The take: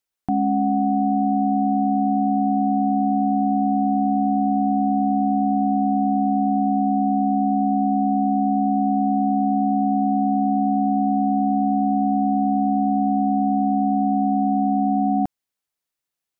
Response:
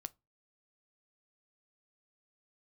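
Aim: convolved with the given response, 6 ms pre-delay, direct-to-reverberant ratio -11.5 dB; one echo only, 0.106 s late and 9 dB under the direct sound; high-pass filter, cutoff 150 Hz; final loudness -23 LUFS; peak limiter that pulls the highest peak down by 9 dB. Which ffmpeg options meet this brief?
-filter_complex "[0:a]highpass=150,alimiter=limit=-21dB:level=0:latency=1,aecho=1:1:106:0.355,asplit=2[a][b];[1:a]atrim=start_sample=2205,adelay=6[c];[b][c]afir=irnorm=-1:irlink=0,volume=15.5dB[d];[a][d]amix=inputs=2:normalize=0,volume=-5.5dB"

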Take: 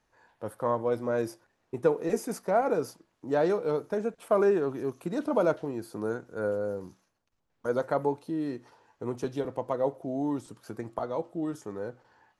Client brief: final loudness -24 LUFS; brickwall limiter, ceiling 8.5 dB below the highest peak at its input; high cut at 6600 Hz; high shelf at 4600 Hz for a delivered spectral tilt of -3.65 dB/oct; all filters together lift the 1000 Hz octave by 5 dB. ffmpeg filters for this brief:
-af "lowpass=6.6k,equalizer=f=1k:t=o:g=7,highshelf=f=4.6k:g=-7.5,volume=7dB,alimiter=limit=-10.5dB:level=0:latency=1"

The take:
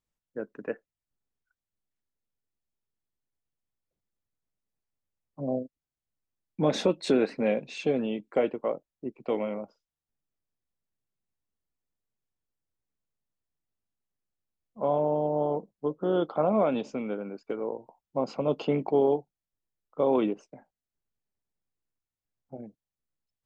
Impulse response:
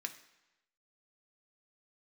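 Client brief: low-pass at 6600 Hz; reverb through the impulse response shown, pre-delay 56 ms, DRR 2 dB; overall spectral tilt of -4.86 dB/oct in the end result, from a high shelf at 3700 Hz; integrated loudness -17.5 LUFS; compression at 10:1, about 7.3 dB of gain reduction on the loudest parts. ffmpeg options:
-filter_complex "[0:a]lowpass=6.6k,highshelf=f=3.7k:g=-6,acompressor=threshold=-26dB:ratio=10,asplit=2[a][b];[1:a]atrim=start_sample=2205,adelay=56[c];[b][c]afir=irnorm=-1:irlink=0,volume=-1.5dB[d];[a][d]amix=inputs=2:normalize=0,volume=15.5dB"

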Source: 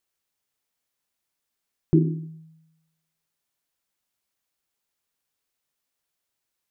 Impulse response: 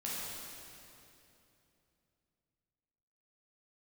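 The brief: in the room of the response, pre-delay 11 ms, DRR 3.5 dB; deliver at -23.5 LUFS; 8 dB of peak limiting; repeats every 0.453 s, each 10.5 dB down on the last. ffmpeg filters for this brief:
-filter_complex "[0:a]alimiter=limit=-16dB:level=0:latency=1,aecho=1:1:453|906|1359:0.299|0.0896|0.0269,asplit=2[a][b];[1:a]atrim=start_sample=2205,adelay=11[c];[b][c]afir=irnorm=-1:irlink=0,volume=-6.5dB[d];[a][d]amix=inputs=2:normalize=0,volume=5dB"

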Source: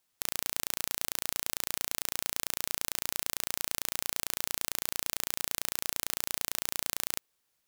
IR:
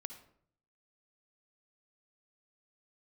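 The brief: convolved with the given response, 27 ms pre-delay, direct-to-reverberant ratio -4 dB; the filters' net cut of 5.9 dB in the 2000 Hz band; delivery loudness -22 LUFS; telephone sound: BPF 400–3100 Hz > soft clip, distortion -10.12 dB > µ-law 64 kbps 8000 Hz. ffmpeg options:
-filter_complex "[0:a]equalizer=f=2k:t=o:g=-6.5,asplit=2[a][b];[1:a]atrim=start_sample=2205,adelay=27[c];[b][c]afir=irnorm=-1:irlink=0,volume=7.5dB[d];[a][d]amix=inputs=2:normalize=0,highpass=400,lowpass=3.1k,asoftclip=threshold=-24.5dB,volume=21.5dB" -ar 8000 -c:a pcm_mulaw

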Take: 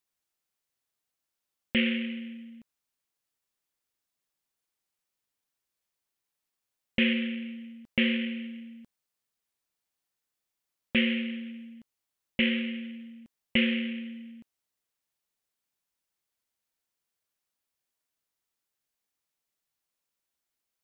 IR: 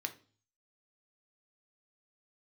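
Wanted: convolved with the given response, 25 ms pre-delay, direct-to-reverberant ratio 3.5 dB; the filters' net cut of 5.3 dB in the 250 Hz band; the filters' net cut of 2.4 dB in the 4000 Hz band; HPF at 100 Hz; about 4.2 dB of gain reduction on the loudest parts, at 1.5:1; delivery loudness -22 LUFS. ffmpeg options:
-filter_complex "[0:a]highpass=100,equalizer=f=250:t=o:g=-5.5,equalizer=f=4k:t=o:g=-4,acompressor=threshold=-35dB:ratio=1.5,asplit=2[a][b];[1:a]atrim=start_sample=2205,adelay=25[c];[b][c]afir=irnorm=-1:irlink=0,volume=-4dB[d];[a][d]amix=inputs=2:normalize=0,volume=13.5dB"

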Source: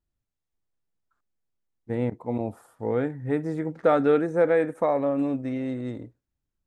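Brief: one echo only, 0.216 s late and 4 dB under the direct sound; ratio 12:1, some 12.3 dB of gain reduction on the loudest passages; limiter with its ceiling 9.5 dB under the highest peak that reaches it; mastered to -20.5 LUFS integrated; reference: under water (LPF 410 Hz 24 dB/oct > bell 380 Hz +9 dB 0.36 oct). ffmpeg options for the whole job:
-af "acompressor=threshold=-28dB:ratio=12,alimiter=level_in=2dB:limit=-24dB:level=0:latency=1,volume=-2dB,lowpass=f=410:w=0.5412,lowpass=f=410:w=1.3066,equalizer=f=380:t=o:w=0.36:g=9,aecho=1:1:216:0.631,volume=14dB"

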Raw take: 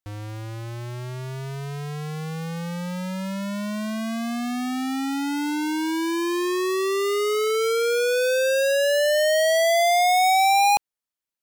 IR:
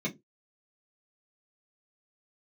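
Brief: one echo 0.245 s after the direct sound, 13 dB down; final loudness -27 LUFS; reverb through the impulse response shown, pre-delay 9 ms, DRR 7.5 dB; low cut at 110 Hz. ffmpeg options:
-filter_complex "[0:a]highpass=110,aecho=1:1:245:0.224,asplit=2[a][b];[1:a]atrim=start_sample=2205,adelay=9[c];[b][c]afir=irnorm=-1:irlink=0,volume=-13dB[d];[a][d]amix=inputs=2:normalize=0,volume=-6.5dB"

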